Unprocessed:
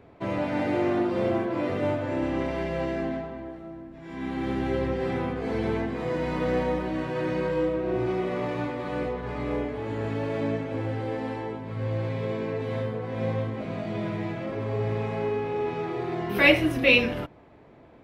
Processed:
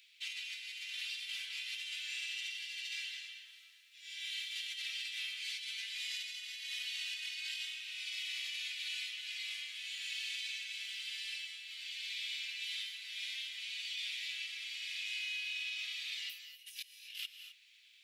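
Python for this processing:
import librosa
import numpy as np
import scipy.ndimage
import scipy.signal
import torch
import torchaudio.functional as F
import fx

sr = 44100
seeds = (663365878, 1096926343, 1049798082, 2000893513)

y = scipy.signal.sosfilt(scipy.signal.butter(6, 2800.0, 'highpass', fs=sr, output='sos'), x)
y = fx.over_compress(y, sr, threshold_db=-53.0, ratio=-0.5)
y = fx.rev_gated(y, sr, seeds[0], gate_ms=280, shape='rising', drr_db=8.0)
y = F.gain(torch.from_numpy(y), 6.0).numpy()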